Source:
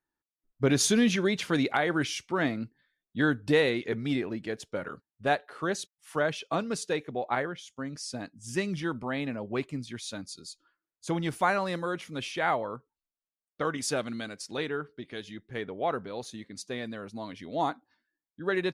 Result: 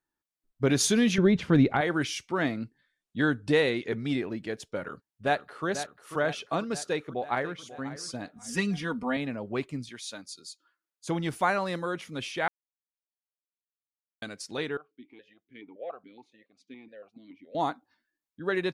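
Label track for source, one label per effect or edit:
1.180000	1.810000	RIAA curve playback
2.540000	4.160000	careless resampling rate divided by 2×, down none, up filtered
4.760000	5.660000	echo throw 0.49 s, feedback 65%, level -10.5 dB
6.830000	7.620000	echo throw 0.54 s, feedback 20%, level -15.5 dB
8.360000	9.170000	comb 4.2 ms, depth 94%
9.890000	11.070000	HPF 500 Hz 6 dB/oct
12.480000	14.220000	mute
14.770000	17.550000	vowel sequencer 7.1 Hz

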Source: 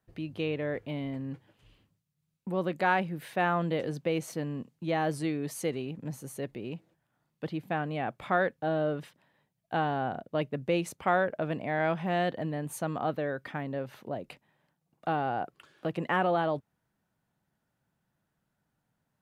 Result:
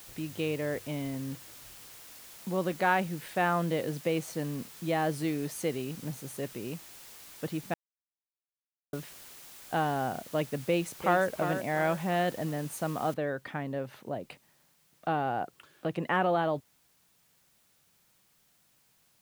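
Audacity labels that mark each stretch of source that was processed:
7.740000	8.930000	mute
10.640000	11.270000	echo throw 0.35 s, feedback 40%, level -8.5 dB
13.140000	13.140000	noise floor step -50 dB -68 dB

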